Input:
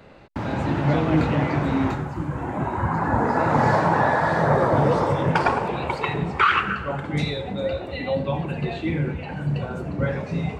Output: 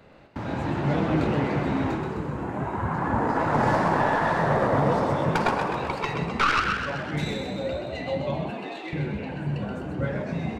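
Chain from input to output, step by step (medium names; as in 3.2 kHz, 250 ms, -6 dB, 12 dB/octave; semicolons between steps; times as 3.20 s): tracing distortion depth 0.087 ms; 8.50–8.93 s: high-pass 540 Hz 12 dB/octave; on a send: frequency-shifting echo 128 ms, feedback 60%, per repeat +57 Hz, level -6 dB; on the sum: trim -4.5 dB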